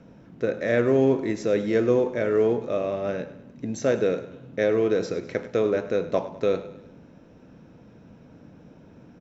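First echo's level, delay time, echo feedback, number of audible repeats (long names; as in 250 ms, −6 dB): −15.5 dB, 101 ms, 49%, 4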